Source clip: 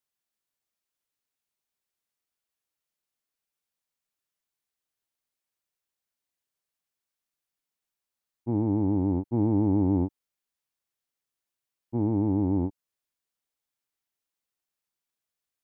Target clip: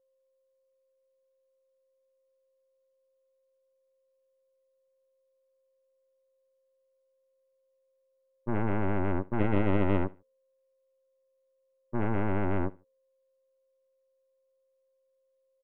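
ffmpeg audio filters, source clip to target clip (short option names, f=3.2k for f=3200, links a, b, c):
-af "aeval=exprs='val(0)+0.000891*sin(2*PI*530*n/s)':c=same,bandreject=f=228.7:t=h:w=4,bandreject=f=457.4:t=h:w=4,aeval=exprs='0.2*(cos(1*acos(clip(val(0)/0.2,-1,1)))-cos(1*PI/2))+0.0447*(cos(3*acos(clip(val(0)/0.2,-1,1)))-cos(3*PI/2))+0.0316*(cos(8*acos(clip(val(0)/0.2,-1,1)))-cos(8*PI/2))':c=same,aecho=1:1:73|146:0.0708|0.0198"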